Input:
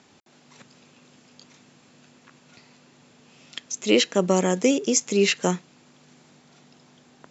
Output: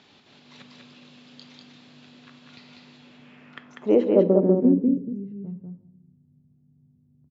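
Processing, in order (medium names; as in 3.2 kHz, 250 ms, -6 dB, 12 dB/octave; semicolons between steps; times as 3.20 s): simulated room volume 250 m³, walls mixed, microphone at 0.37 m; low-pass sweep 3.8 kHz -> 100 Hz, 2.97–5.21 s; delay 195 ms -3.5 dB; trim -1.5 dB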